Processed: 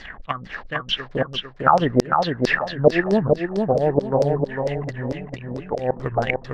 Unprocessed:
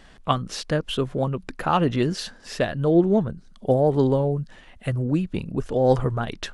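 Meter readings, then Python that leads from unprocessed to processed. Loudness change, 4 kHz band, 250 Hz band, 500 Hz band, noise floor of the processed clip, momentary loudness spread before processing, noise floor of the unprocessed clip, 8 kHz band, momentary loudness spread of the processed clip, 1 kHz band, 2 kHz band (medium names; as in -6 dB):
+1.5 dB, +4.5 dB, -1.0 dB, +2.0 dB, -41 dBFS, 11 LU, -49 dBFS, no reading, 12 LU, +5.0 dB, +9.5 dB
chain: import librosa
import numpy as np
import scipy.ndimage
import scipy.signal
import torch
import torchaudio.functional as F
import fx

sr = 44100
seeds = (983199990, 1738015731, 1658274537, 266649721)

p1 = fx.transient(x, sr, attack_db=11, sustain_db=-2)
p2 = fx.peak_eq(p1, sr, hz=1900.0, db=9.5, octaves=0.66)
p3 = fx.auto_swell(p2, sr, attack_ms=553.0)
p4 = fx.env_lowpass_down(p3, sr, base_hz=1200.0, full_db=-22.5)
p5 = fx.sample_hold(p4, sr, seeds[0], rate_hz=9000.0, jitter_pct=20)
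p6 = p4 + (p5 * librosa.db_to_amplitude(-5.0))
p7 = fx.filter_lfo_lowpass(p6, sr, shape='saw_down', hz=4.5, low_hz=490.0, high_hz=5400.0, q=4.7)
p8 = p7 + fx.echo_feedback(p7, sr, ms=452, feedback_pct=31, wet_db=-4.0, dry=0)
y = p8 * librosa.db_to_amplitude(1.0)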